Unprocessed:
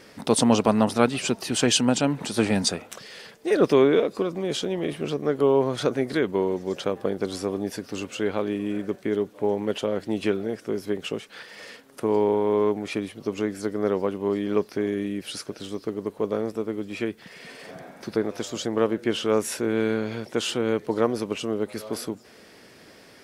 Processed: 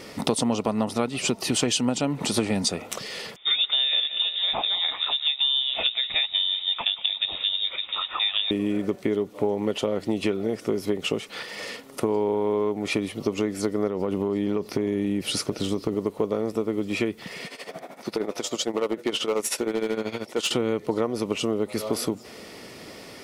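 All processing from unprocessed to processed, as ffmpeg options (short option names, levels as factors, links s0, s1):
-filter_complex "[0:a]asettb=1/sr,asplit=3[s0][s1][s2];[s0]atrim=end=3.364[s3];[s1]atrim=start=3.36:end=8.51,asetpts=PTS-STARTPTS,afade=t=in:d=0.004:c=qsin,afade=t=out:st=5.146:d=0.004:c=qsin,highpass=400,aecho=1:1:181|362|543|724:0.158|0.0777|0.0381|0.0186,atrim=end_sample=227115,lowpass=f=3400:t=q:w=0.5098,lowpass=f=3400:t=q:w=0.6013,lowpass=f=3400:t=q:w=0.9,lowpass=f=3400:t=q:w=2.563,afreqshift=-4000[s4];[s2]atrim=start=8.506[s5];[s3][s4]acrossfade=d=0.004:c1=hsin:c2=qsin[s6];[s6][s5]acrossfade=d=0.004:c1=qsin:c2=hsin,asettb=1/sr,asplit=3[s7][s8][s9];[s7]atrim=end=13.874[s10];[s8]atrim=start=13.87:end=15.95,asetpts=PTS-STARTPTS,afade=t=in:d=0.004:c=qsin,afade=t=out:st=2.076:d=0.004:c=qsin,lowshelf=f=380:g=5,acompressor=threshold=0.0631:ratio=5:attack=3.2:release=140:knee=1:detection=peak[s11];[s9]atrim=start=15.946[s12];[s10][s11]acrossfade=d=0.004:c1=hsin:c2=qsin[s13];[s13][s12]acrossfade=d=0.004:c1=qsin:c2=hsin,asettb=1/sr,asplit=3[s14][s15][s16];[s14]atrim=end=17.464[s17];[s15]atrim=start=17.46:end=20.51,asetpts=PTS-STARTPTS,afade=t=in:d=0.004:c=qsin,afade=t=out:st=3.046:d=0.004:c=qsin,highpass=f=380:p=1,tremolo=f=13:d=0.81,volume=15.8,asoftclip=hard,volume=0.0631[s18];[s16]atrim=start=20.506[s19];[s17][s18]acrossfade=d=0.004:c1=hsin:c2=qsin[s20];[s20][s19]acrossfade=d=0.004:c1=qsin:c2=hsin,bandreject=f=1600:w=5.5,acompressor=threshold=0.0355:ratio=6,volume=2.51"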